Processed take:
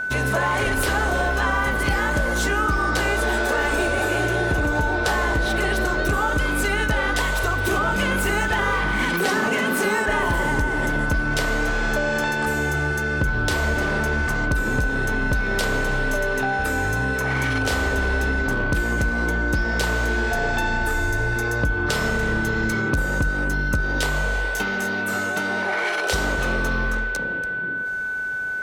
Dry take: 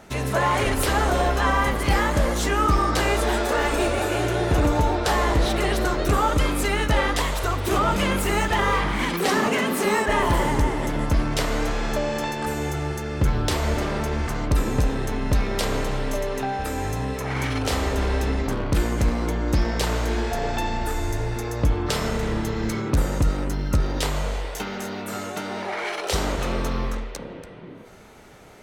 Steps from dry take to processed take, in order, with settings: compression, threshold -22 dBFS, peak gain reduction 7.5 dB; whistle 1.5 kHz -27 dBFS; trim +3 dB

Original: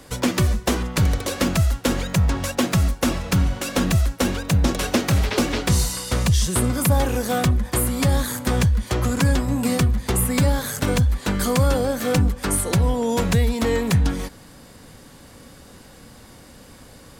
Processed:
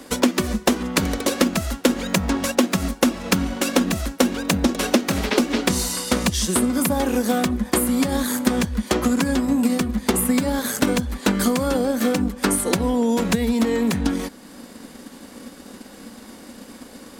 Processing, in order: resonant low shelf 170 Hz -9 dB, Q 3; compression, threshold -20 dBFS, peak gain reduction 9.5 dB; transient shaper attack +4 dB, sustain -3 dB; trim +3 dB

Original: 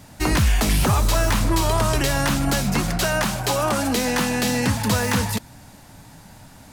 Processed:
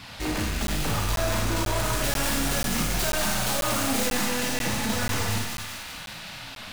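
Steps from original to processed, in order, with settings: tracing distortion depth 0.069 ms; band noise 570–4500 Hz -42 dBFS; flange 0.37 Hz, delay 0.8 ms, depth 9.2 ms, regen -34%; hard clipper -28 dBFS, distortion -6 dB; 1.77–4.08 s: treble shelf 6.6 kHz +6.5 dB; feedback echo behind a high-pass 192 ms, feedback 63%, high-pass 1.6 kHz, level -4 dB; Schroeder reverb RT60 0.96 s, combs from 26 ms, DRR 0 dB; crackling interface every 0.49 s, samples 512, zero, from 0.67 s

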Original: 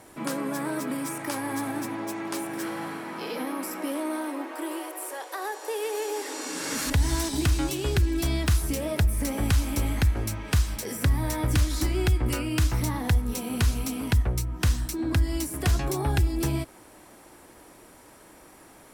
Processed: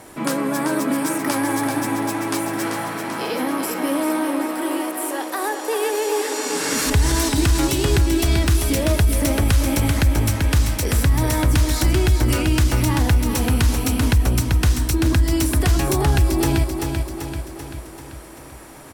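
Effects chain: feedback delay 388 ms, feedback 56%, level -6.5 dB; peak limiter -16.5 dBFS, peak gain reduction 5.5 dB; trim +8 dB

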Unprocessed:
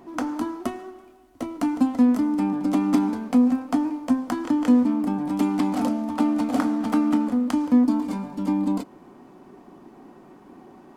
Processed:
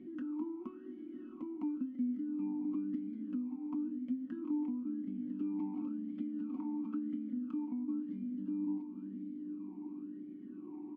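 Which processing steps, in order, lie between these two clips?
tilt EQ -3.5 dB/octave; on a send: echo that smears into a reverb 563 ms, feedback 45%, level -11 dB; on the sum: compression 2.5:1, threshold -41 dBFS, peak gain reduction 22 dB; comb 5.4 ms, depth 52%; talking filter i-u 0.97 Hz; trim +2.5 dB

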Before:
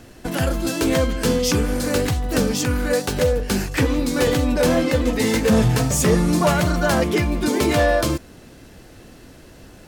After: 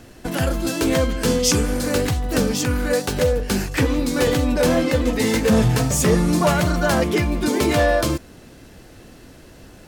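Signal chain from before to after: 1.27–1.78 s: dynamic bell 7.5 kHz, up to +7 dB, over -37 dBFS, Q 0.96

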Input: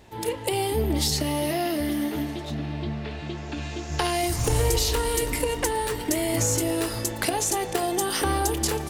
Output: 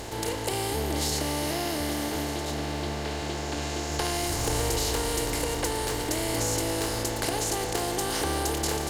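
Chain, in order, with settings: spectral levelling over time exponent 0.4; trim -9 dB

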